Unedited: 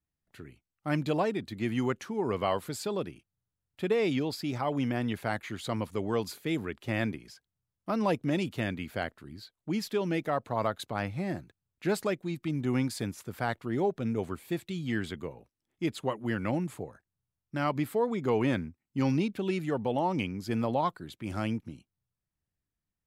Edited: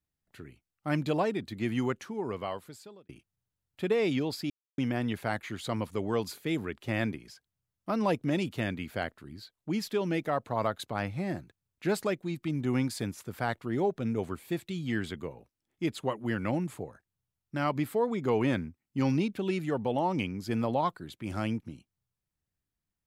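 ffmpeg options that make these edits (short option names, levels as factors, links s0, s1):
-filter_complex "[0:a]asplit=4[s0][s1][s2][s3];[s0]atrim=end=3.09,asetpts=PTS-STARTPTS,afade=t=out:st=1.77:d=1.32[s4];[s1]atrim=start=3.09:end=4.5,asetpts=PTS-STARTPTS,afade=t=in:d=0.004:c=hsin,afade=t=out:st=1.406:d=0.004:c=hsin[s5];[s2]atrim=start=4.5:end=4.78,asetpts=PTS-STARTPTS,volume=0[s6];[s3]atrim=start=4.78,asetpts=PTS-STARTPTS,afade=t=in:d=0.004:c=hsin[s7];[s4][s5][s6][s7]concat=n=4:v=0:a=1"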